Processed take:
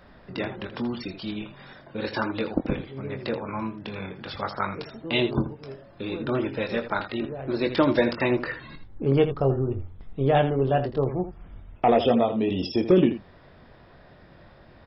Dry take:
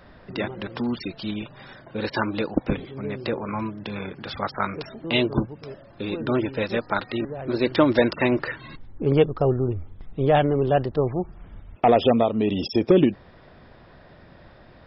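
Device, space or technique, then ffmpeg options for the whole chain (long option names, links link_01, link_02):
slapback doubling: -filter_complex "[0:a]asplit=3[link_01][link_02][link_03];[link_02]adelay=22,volume=-8dB[link_04];[link_03]adelay=81,volume=-11dB[link_05];[link_01][link_04][link_05]amix=inputs=3:normalize=0,volume=-3dB"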